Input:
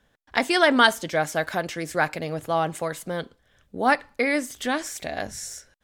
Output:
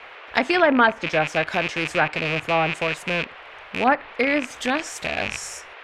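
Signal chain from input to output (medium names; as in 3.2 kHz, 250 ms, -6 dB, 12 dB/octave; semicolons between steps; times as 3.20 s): rattle on loud lows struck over -42 dBFS, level -15 dBFS; band noise 410–2700 Hz -44 dBFS; low-pass that closes with the level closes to 1.7 kHz, closed at -15 dBFS; trim +2 dB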